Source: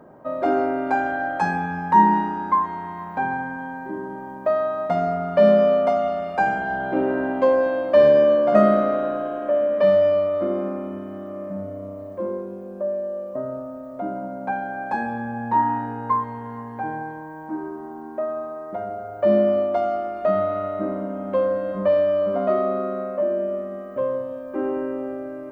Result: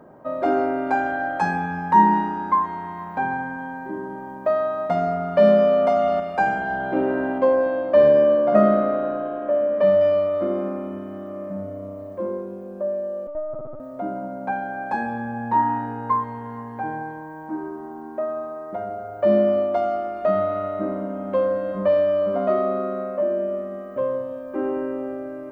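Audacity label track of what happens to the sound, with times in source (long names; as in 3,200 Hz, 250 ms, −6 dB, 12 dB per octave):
5.730000	6.200000	envelope flattener amount 50%
7.380000	10.010000	high-shelf EQ 2,800 Hz −9.5 dB
13.270000	13.800000	linear-prediction vocoder at 8 kHz pitch kept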